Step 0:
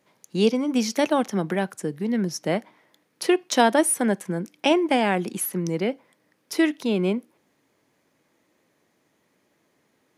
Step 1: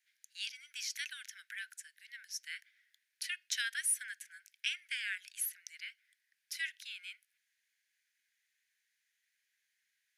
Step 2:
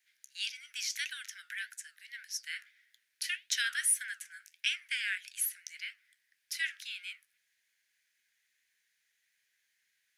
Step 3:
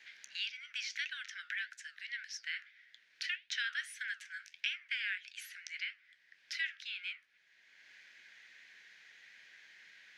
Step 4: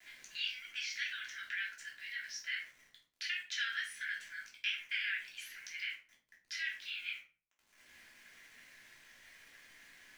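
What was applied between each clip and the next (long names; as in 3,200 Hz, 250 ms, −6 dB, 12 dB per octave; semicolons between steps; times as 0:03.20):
Butterworth high-pass 1,500 Hz 96 dB per octave; level −8.5 dB
flanger 1.7 Hz, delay 7.8 ms, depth 7.6 ms, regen −71%; level +8.5 dB
high-frequency loss of the air 200 metres; multiband upward and downward compressor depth 70%; level +2 dB
centre clipping without the shift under −58 dBFS; rectangular room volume 320 cubic metres, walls furnished, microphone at 3.1 metres; level −4.5 dB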